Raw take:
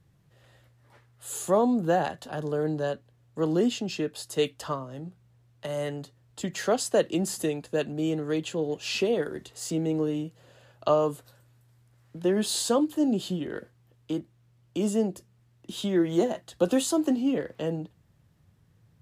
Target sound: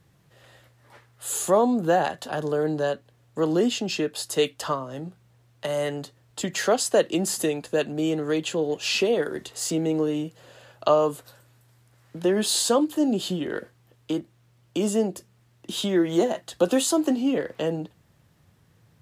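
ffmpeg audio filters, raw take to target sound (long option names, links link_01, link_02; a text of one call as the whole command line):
ffmpeg -i in.wav -filter_complex "[0:a]lowshelf=frequency=210:gain=-8.5,asplit=2[link_01][link_02];[link_02]acompressor=threshold=-34dB:ratio=6,volume=-2.5dB[link_03];[link_01][link_03]amix=inputs=2:normalize=0,volume=3dB" out.wav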